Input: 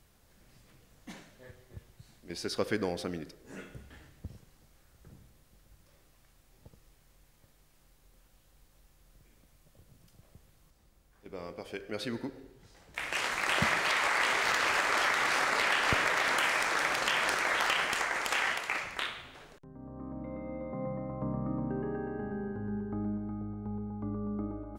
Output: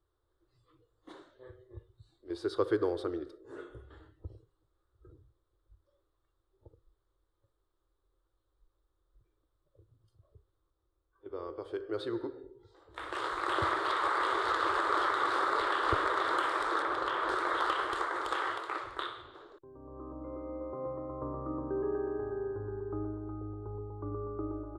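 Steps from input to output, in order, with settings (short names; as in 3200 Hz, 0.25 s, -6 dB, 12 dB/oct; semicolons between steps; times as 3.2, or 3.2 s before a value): EQ curve 110 Hz 0 dB, 200 Hz -26 dB, 340 Hz +8 dB, 730 Hz -5 dB, 1200 Hz +5 dB, 2500 Hz -19 dB, 3600 Hz -2 dB, 6000 Hz -19 dB, 8600 Hz -11 dB, 14000 Hz -24 dB; spectral noise reduction 14 dB; 16.82–17.3 high shelf 4200 Hz -9 dB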